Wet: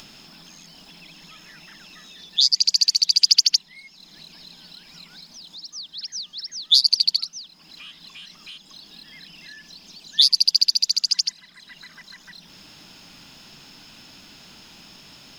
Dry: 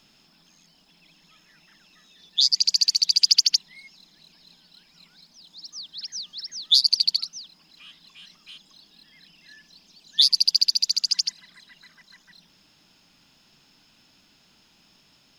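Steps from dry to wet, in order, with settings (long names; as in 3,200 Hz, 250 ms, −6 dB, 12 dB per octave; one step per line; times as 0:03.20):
upward compression, threshold −37 dBFS
level +2 dB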